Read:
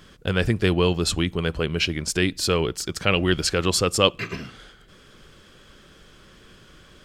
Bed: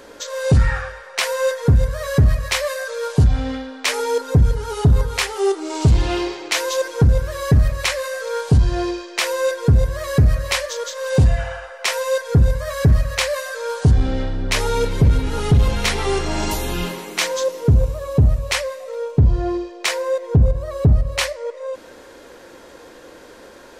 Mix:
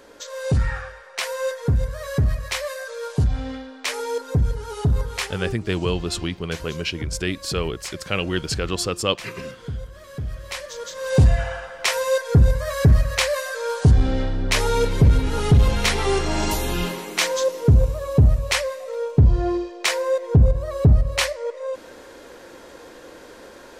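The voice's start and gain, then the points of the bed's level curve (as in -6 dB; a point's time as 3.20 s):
5.05 s, -3.5 dB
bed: 5.24 s -6 dB
5.57 s -17 dB
10.17 s -17 dB
11.20 s -0.5 dB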